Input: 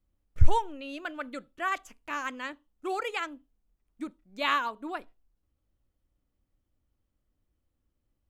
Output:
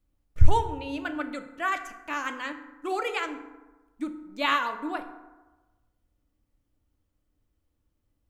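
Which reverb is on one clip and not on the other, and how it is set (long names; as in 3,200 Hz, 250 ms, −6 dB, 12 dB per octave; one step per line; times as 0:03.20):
feedback delay network reverb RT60 1.2 s, low-frequency decay 1×, high-frequency decay 0.45×, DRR 6.5 dB
level +2 dB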